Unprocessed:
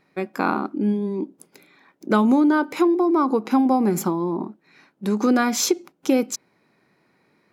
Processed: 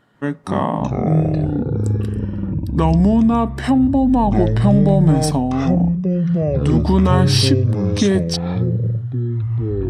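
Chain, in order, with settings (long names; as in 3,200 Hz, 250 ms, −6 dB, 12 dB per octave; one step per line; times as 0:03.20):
in parallel at +3 dB: brickwall limiter −14 dBFS, peak gain reduction 10 dB
on the sum: speed change −24%
delay with pitch and tempo change per echo 145 ms, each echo −7 semitones, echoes 3
level −3 dB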